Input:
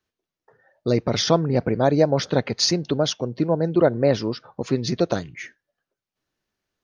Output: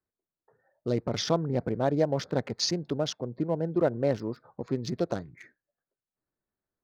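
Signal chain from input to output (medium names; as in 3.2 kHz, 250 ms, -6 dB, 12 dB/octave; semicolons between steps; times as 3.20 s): local Wiener filter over 15 samples; trim -7.5 dB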